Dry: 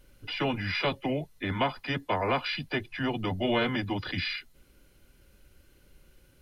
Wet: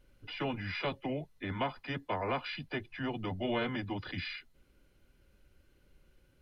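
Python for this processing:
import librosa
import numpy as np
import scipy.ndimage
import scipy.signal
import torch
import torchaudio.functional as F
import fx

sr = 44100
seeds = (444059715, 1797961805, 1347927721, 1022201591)

y = fx.high_shelf(x, sr, hz=5200.0, db=-9.0)
y = y * 10.0 ** (-6.0 / 20.0)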